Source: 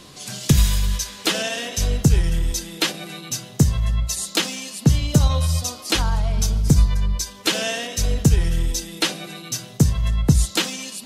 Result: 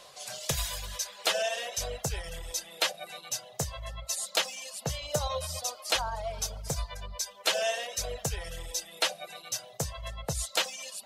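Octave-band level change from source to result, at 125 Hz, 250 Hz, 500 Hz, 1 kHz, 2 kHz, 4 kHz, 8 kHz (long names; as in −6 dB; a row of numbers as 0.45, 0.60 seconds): −21.0, −23.0, −4.0, −4.0, −6.5, −7.0, −7.0 decibels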